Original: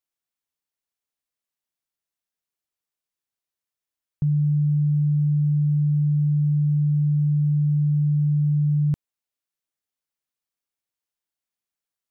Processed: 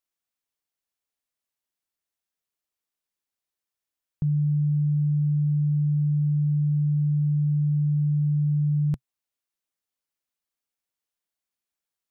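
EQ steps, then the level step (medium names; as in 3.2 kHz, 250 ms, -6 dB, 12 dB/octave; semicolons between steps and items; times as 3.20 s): peaking EQ 130 Hz -7.5 dB 0.26 oct; 0.0 dB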